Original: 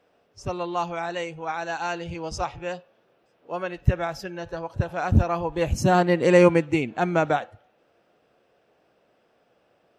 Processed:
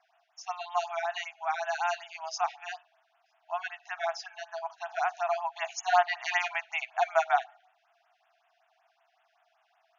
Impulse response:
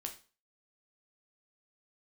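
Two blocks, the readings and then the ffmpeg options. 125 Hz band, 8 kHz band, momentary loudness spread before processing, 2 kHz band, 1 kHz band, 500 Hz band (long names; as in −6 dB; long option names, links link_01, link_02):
below −40 dB, −3.0 dB, 16 LU, −2.0 dB, −1.5 dB, −10.5 dB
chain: -af "aeval=exprs='0.708*(cos(1*acos(clip(val(0)/0.708,-1,1)))-cos(1*PI/2))+0.141*(cos(2*acos(clip(val(0)/0.708,-1,1)))-cos(2*PI/2))+0.0398*(cos(4*acos(clip(val(0)/0.708,-1,1)))-cos(4*PI/2))':channel_layout=same,afftfilt=real='re*between(b*sr/4096,640,7000)':imag='im*between(b*sr/4096,640,7000)':win_size=4096:overlap=0.75,afftfilt=real='re*(1-between(b*sr/1024,940*pow(5300/940,0.5+0.5*sin(2*PI*5.3*pts/sr))/1.41,940*pow(5300/940,0.5+0.5*sin(2*PI*5.3*pts/sr))*1.41))':imag='im*(1-between(b*sr/1024,940*pow(5300/940,0.5+0.5*sin(2*PI*5.3*pts/sr))/1.41,940*pow(5300/940,0.5+0.5*sin(2*PI*5.3*pts/sr))*1.41))':win_size=1024:overlap=0.75"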